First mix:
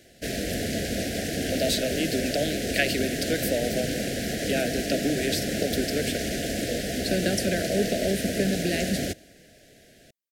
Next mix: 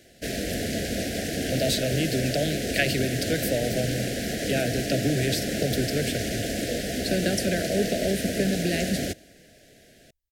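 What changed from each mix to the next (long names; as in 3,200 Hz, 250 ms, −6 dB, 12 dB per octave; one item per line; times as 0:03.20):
speech: remove linear-phase brick-wall high-pass 160 Hz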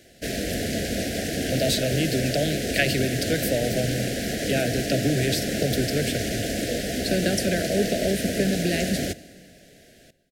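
speech: send on
background: send +9.0 dB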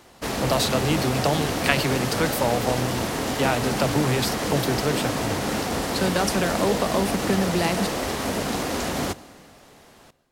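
speech: entry −1.10 s
master: remove elliptic band-stop filter 670–1,600 Hz, stop band 60 dB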